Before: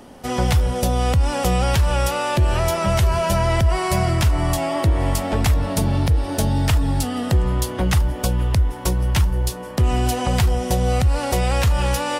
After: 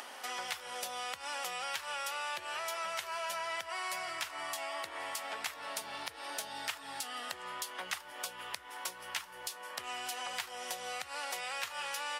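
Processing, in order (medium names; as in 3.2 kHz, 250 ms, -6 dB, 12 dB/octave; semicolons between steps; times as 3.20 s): high-pass 1.4 kHz 12 dB/octave; treble shelf 3.5 kHz -7 dB; upward compressor, threshold -25 dBFS; trim -8.5 dB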